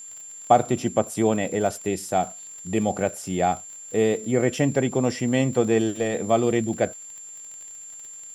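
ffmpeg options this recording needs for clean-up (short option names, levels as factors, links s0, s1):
-af "adeclick=t=4,bandreject=f=7300:w=30,agate=range=0.0891:threshold=0.0224"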